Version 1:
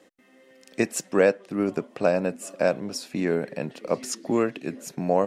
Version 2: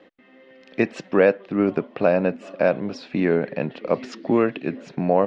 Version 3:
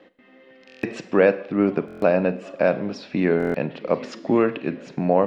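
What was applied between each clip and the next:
LPF 3700 Hz 24 dB/oct; in parallel at -2 dB: limiter -15 dBFS, peak gain reduction 8 dB
reverb RT60 0.65 s, pre-delay 33 ms, DRR 13.5 dB; stuck buffer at 0.67/1.86/3.38, samples 1024, times 6

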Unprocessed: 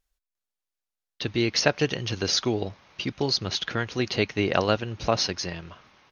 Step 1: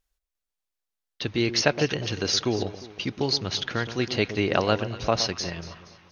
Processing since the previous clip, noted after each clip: echo with dull and thin repeats by turns 0.118 s, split 1200 Hz, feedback 62%, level -11 dB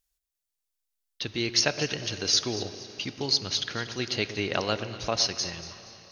high shelf 3400 Hz +12 dB; reverb RT60 3.8 s, pre-delay 4 ms, DRR 14 dB; gain -6.5 dB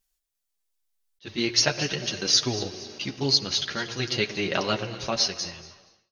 ending faded out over 1.08 s; chorus voices 4, 0.42 Hz, delay 10 ms, depth 4.9 ms; attack slew limiter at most 430 dB/s; gain +5.5 dB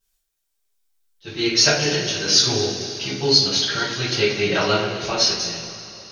two-slope reverb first 0.4 s, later 3.6 s, from -18 dB, DRR -8.5 dB; gain -2.5 dB

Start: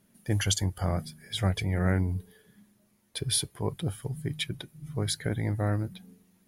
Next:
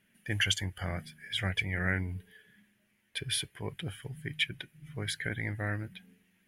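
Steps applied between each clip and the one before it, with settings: band shelf 2200 Hz +14 dB 1.3 oct; gain -7.5 dB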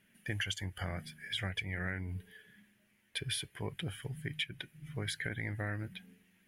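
compressor 5:1, threshold -35 dBFS, peak gain reduction 11.5 dB; gain +1 dB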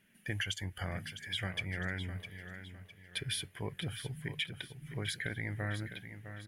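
feedback echo 0.657 s, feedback 36%, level -10.5 dB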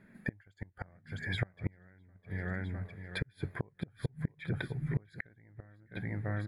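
running mean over 15 samples; flipped gate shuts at -33 dBFS, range -33 dB; gain +12.5 dB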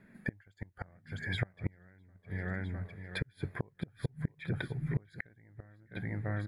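wow and flutter 19 cents

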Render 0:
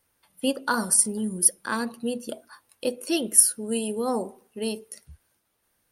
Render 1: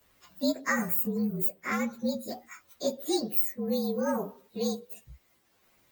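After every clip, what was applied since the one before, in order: inharmonic rescaling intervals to 115%; three-band squash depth 40%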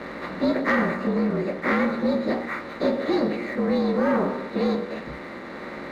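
per-bin compression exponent 0.4; LPF 3200 Hz 24 dB/oct; sample leveller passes 1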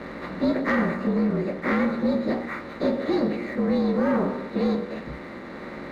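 low shelf 260 Hz +6.5 dB; gain -3 dB

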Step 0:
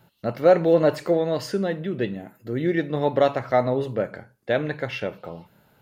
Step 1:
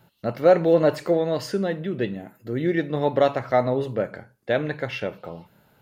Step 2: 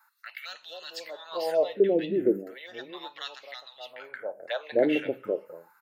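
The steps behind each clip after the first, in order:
nothing audible
envelope phaser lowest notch 520 Hz, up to 2200 Hz, full sweep at -18 dBFS; three bands offset in time highs, lows, mids 0.23/0.26 s, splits 210/860 Hz; LFO high-pass sine 0.35 Hz 300–2800 Hz

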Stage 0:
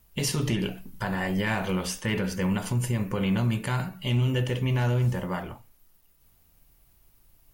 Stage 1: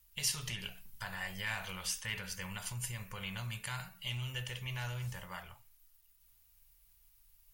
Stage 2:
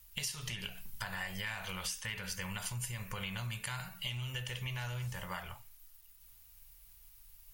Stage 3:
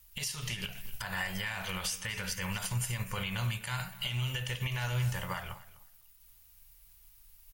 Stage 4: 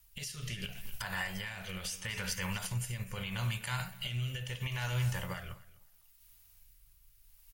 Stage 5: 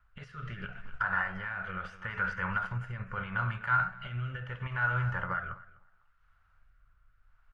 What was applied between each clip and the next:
passive tone stack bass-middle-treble 10-0-10; gain -2.5 dB
compressor 6:1, threshold -44 dBFS, peak gain reduction 14.5 dB; gain +7.5 dB
limiter -30.5 dBFS, peak gain reduction 9 dB; feedback echo 0.251 s, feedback 18%, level -14.5 dB; upward expander 1.5:1, over -54 dBFS; gain +8.5 dB
rotary speaker horn 0.75 Hz
synth low-pass 1400 Hz, resonance Q 7.5

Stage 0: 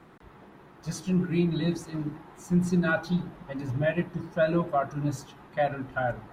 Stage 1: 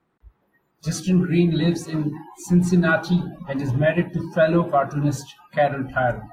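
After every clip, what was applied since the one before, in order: spectral noise reduction 28 dB; in parallel at -1.5 dB: compressor, threshold -35 dBFS, peak gain reduction 15 dB; on the sum: gain +5.5 dB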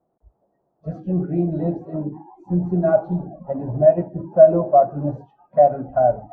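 synth low-pass 660 Hz, resonance Q 4.4; gain -4.5 dB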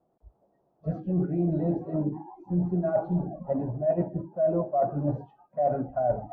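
reverse; compressor 8:1, threshold -22 dBFS, peak gain reduction 16.5 dB; reverse; air absorption 130 m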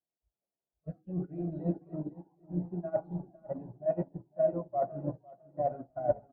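feedback echo 0.503 s, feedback 52%, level -9 dB; upward expander 2.5:1, over -38 dBFS; gain -2 dB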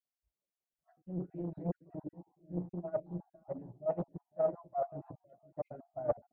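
random spectral dropouts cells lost 32%; Doppler distortion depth 0.7 ms; gain -3.5 dB

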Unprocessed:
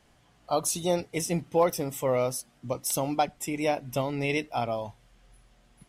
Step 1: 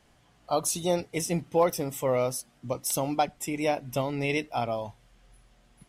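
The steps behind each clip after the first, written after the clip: nothing audible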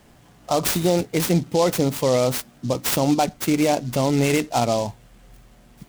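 bell 220 Hz +5 dB 2.1 oct; limiter -18 dBFS, peak gain reduction 7.5 dB; noise-modulated delay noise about 4700 Hz, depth 0.047 ms; gain +8.5 dB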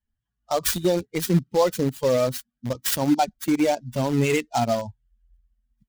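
per-bin expansion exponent 2; in parallel at -12 dB: bit-crush 4-bit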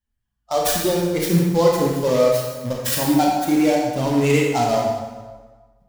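reverb RT60 1.4 s, pre-delay 18 ms, DRR -2.5 dB

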